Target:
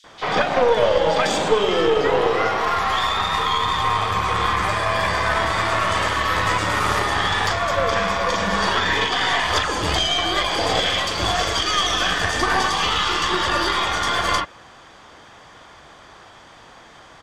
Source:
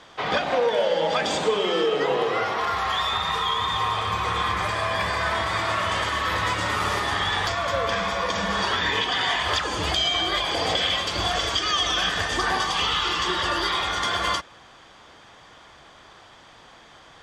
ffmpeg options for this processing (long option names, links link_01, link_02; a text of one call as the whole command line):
ffmpeg -i in.wav -filter_complex "[0:a]acrossover=split=3400[link_01][link_02];[link_01]adelay=40[link_03];[link_03][link_02]amix=inputs=2:normalize=0,aeval=exprs='0.282*(cos(1*acos(clip(val(0)/0.282,-1,1)))-cos(1*PI/2))+0.0631*(cos(2*acos(clip(val(0)/0.282,-1,1)))-cos(2*PI/2))+0.01*(cos(6*acos(clip(val(0)/0.282,-1,1)))-cos(6*PI/2))+0.00224*(cos(8*acos(clip(val(0)/0.282,-1,1)))-cos(8*PI/2))':channel_layout=same,volume=4.5dB" out.wav